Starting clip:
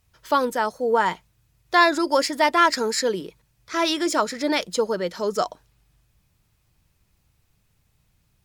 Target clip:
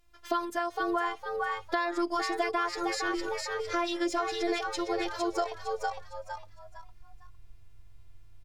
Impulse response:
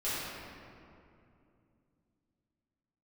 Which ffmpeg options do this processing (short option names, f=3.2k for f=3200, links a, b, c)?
-filter_complex "[0:a]afftfilt=real='hypot(re,im)*cos(PI*b)':imag='0':win_size=512:overlap=0.75,alimiter=limit=-10.5dB:level=0:latency=1:release=198,asplit=5[a][b][c][d][e];[b]adelay=457,afreqshift=97,volume=-7dB[f];[c]adelay=914,afreqshift=194,volume=-17.2dB[g];[d]adelay=1371,afreqshift=291,volume=-27.3dB[h];[e]adelay=1828,afreqshift=388,volume=-37.5dB[i];[a][f][g][h][i]amix=inputs=5:normalize=0,asubboost=boost=8.5:cutoff=68,acompressor=threshold=-32dB:ratio=3,aemphasis=mode=reproduction:type=cd,volume=4dB"